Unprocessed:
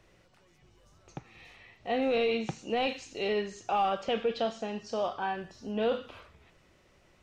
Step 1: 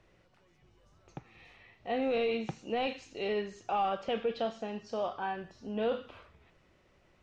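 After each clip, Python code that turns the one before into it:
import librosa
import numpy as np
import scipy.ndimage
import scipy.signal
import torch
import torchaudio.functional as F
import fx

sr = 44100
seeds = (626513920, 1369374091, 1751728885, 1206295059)

y = fx.high_shelf(x, sr, hz=6300.0, db=-11.5)
y = y * 10.0 ** (-2.5 / 20.0)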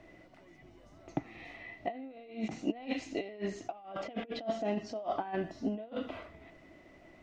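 y = fx.over_compress(x, sr, threshold_db=-39.0, ratio=-0.5)
y = fx.small_body(y, sr, hz=(290.0, 650.0, 2000.0), ring_ms=35, db=14)
y = y * 10.0 ** (-3.0 / 20.0)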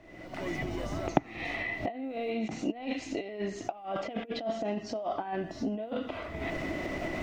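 y = fx.recorder_agc(x, sr, target_db=-26.0, rise_db_per_s=52.0, max_gain_db=30)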